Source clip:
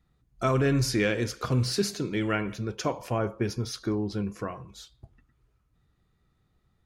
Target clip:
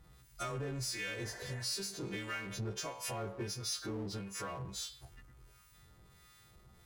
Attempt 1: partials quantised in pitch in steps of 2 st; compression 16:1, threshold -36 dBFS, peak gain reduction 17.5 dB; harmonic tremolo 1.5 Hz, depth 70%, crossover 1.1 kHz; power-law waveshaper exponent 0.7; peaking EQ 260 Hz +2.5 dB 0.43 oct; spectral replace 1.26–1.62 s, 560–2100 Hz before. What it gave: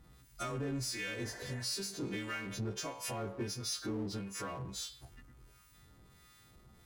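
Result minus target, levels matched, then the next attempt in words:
250 Hz band +3.0 dB
partials quantised in pitch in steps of 2 st; compression 16:1, threshold -36 dBFS, peak gain reduction 17.5 dB; harmonic tremolo 1.5 Hz, depth 70%, crossover 1.1 kHz; power-law waveshaper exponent 0.7; peaking EQ 260 Hz -6.5 dB 0.43 oct; spectral replace 1.26–1.62 s, 560–2100 Hz before

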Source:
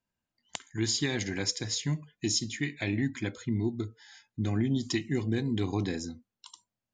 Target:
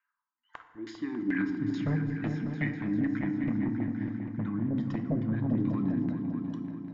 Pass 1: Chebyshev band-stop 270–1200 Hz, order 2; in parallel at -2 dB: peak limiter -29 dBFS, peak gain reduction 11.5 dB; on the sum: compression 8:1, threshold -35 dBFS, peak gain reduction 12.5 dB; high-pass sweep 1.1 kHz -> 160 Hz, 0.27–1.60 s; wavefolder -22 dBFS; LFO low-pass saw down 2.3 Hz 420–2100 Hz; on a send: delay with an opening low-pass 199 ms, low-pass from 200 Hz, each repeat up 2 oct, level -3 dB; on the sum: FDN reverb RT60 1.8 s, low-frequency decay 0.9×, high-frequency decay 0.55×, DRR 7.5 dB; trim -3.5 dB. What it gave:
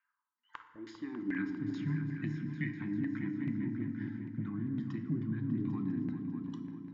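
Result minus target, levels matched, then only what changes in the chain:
compression: peak gain reduction +6.5 dB
change: compression 8:1, threshold -27.5 dBFS, peak gain reduction 6 dB

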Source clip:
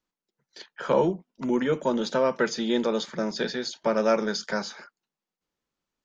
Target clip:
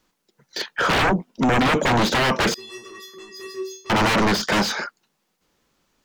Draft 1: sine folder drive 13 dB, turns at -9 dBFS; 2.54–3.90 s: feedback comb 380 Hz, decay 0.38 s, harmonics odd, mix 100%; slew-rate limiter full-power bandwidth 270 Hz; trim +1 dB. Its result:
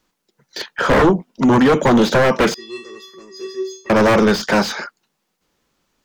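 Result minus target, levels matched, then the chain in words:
sine folder: distortion -12 dB
sine folder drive 13 dB, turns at -15.5 dBFS; 2.54–3.90 s: feedback comb 380 Hz, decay 0.38 s, harmonics odd, mix 100%; slew-rate limiter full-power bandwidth 270 Hz; trim +1 dB

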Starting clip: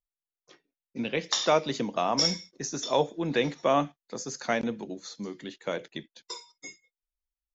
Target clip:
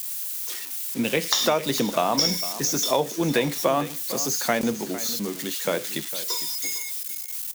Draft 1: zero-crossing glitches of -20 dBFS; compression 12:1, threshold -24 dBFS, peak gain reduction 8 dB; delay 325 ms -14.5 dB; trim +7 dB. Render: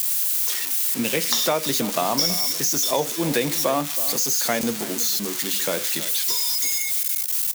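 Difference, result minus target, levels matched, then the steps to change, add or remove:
zero-crossing glitches: distortion +9 dB; echo 130 ms early
change: zero-crossing glitches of -29 dBFS; change: delay 455 ms -14.5 dB

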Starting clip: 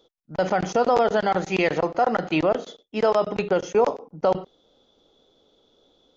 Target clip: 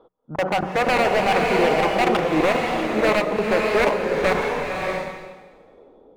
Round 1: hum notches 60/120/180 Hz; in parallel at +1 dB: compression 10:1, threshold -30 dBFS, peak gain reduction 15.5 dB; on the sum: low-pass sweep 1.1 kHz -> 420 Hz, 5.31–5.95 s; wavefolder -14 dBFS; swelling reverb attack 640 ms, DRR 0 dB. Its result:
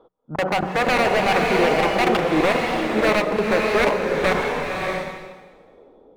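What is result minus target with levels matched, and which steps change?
compression: peak gain reduction -8.5 dB
change: compression 10:1, threshold -39.5 dBFS, peak gain reduction 24 dB

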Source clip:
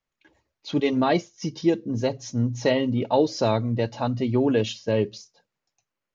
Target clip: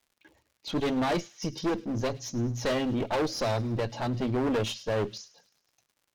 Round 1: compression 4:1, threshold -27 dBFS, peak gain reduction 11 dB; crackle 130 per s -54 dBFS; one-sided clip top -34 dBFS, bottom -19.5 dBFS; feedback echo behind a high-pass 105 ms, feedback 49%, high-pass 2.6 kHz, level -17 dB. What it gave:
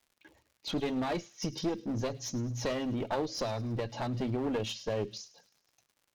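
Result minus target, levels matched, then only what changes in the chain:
compression: peak gain reduction +11 dB
remove: compression 4:1, threshold -27 dBFS, peak gain reduction 11 dB

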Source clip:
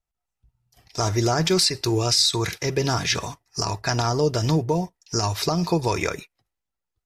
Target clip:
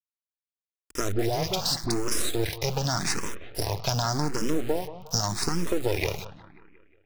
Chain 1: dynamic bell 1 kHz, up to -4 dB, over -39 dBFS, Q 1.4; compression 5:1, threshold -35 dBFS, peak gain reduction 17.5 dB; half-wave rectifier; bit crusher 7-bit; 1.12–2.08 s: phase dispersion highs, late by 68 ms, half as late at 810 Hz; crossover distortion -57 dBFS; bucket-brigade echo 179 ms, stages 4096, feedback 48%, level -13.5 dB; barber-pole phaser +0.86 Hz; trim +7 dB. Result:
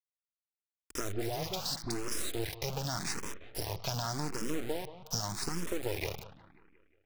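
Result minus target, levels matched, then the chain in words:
compression: peak gain reduction +9 dB
dynamic bell 1 kHz, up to -4 dB, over -39 dBFS, Q 1.4; compression 5:1, threshold -24 dBFS, peak gain reduction 8.5 dB; half-wave rectifier; bit crusher 7-bit; 1.12–2.08 s: phase dispersion highs, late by 68 ms, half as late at 810 Hz; crossover distortion -57 dBFS; bucket-brigade echo 179 ms, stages 4096, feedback 48%, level -13.5 dB; barber-pole phaser +0.86 Hz; trim +7 dB

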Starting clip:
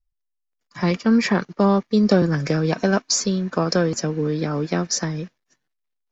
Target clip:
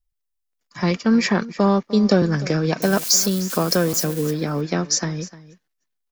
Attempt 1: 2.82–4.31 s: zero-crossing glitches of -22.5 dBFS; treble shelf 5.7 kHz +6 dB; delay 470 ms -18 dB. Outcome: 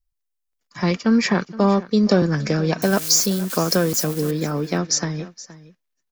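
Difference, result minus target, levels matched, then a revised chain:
echo 168 ms late
2.82–4.31 s: zero-crossing glitches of -22.5 dBFS; treble shelf 5.7 kHz +6 dB; delay 302 ms -18 dB

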